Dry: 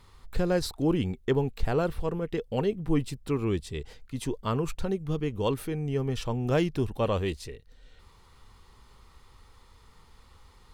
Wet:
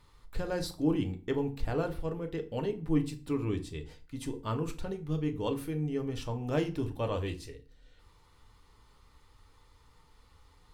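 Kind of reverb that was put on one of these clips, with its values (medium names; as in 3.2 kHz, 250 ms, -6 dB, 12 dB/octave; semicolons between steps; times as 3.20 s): FDN reverb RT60 0.37 s, low-frequency decay 1.35×, high-frequency decay 0.8×, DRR 5 dB; trim -6.5 dB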